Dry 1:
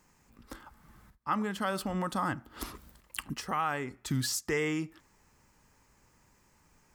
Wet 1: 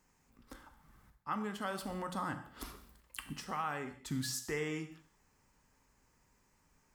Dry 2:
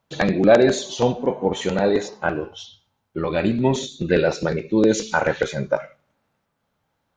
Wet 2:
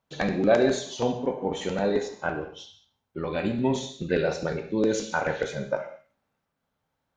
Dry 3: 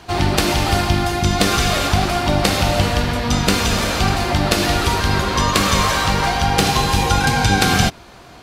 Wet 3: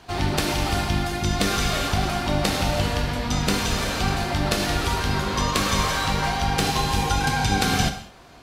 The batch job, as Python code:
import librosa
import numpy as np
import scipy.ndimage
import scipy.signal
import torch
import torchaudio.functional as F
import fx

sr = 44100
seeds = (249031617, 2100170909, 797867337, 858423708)

y = fx.rev_gated(x, sr, seeds[0], gate_ms=240, shape='falling', drr_db=7.0)
y = y * librosa.db_to_amplitude(-7.0)